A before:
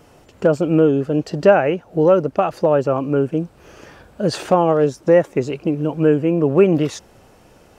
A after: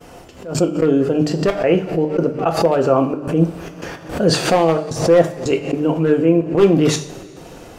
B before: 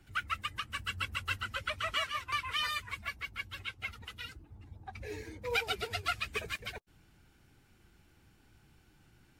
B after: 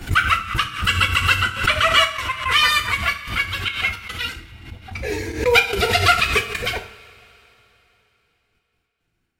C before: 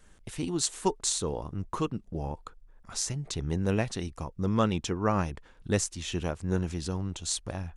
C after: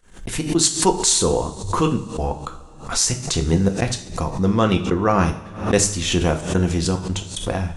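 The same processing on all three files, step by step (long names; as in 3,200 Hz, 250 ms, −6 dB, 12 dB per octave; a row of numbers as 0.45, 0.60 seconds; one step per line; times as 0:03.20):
wavefolder on the positive side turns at −6 dBFS
downward expander −45 dBFS
mains-hum notches 50/100/150 Hz
reversed playback
downward compressor 5 to 1, threshold −25 dBFS
reversed playback
gate pattern "xxx.x.xxxxx." 110 BPM −24 dB
coupled-rooms reverb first 0.43 s, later 3.5 s, from −21 dB, DRR 4.5 dB
background raised ahead of every attack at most 110 dB per second
normalise the peak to −1.5 dBFS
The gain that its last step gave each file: +11.5, +17.0, +12.0 decibels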